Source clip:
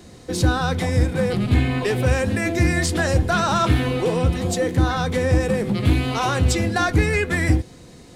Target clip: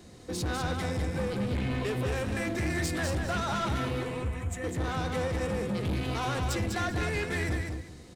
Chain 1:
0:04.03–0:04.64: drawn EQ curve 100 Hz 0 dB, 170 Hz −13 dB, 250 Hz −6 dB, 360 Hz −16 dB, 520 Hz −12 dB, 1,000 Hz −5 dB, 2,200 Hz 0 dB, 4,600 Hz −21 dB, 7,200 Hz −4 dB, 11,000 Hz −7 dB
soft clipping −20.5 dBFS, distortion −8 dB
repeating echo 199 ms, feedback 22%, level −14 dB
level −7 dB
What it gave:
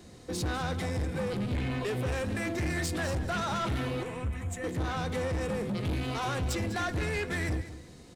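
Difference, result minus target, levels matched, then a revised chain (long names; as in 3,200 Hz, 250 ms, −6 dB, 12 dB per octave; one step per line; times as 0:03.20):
echo-to-direct −9 dB
0:04.03–0:04.64: drawn EQ curve 100 Hz 0 dB, 170 Hz −13 dB, 250 Hz −6 dB, 360 Hz −16 dB, 520 Hz −12 dB, 1,000 Hz −5 dB, 2,200 Hz 0 dB, 4,600 Hz −21 dB, 7,200 Hz −4 dB, 11,000 Hz −7 dB
soft clipping −20.5 dBFS, distortion −8 dB
repeating echo 199 ms, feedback 22%, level −5 dB
level −7 dB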